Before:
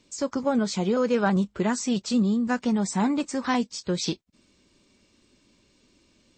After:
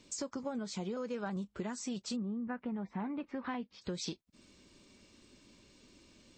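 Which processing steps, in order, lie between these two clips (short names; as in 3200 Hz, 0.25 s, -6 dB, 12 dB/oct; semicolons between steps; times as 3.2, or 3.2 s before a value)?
2.15–3.81 LPF 2000 Hz -> 3400 Hz 24 dB/oct; compressor 4:1, threshold -40 dBFS, peak gain reduction 18 dB; gain +1 dB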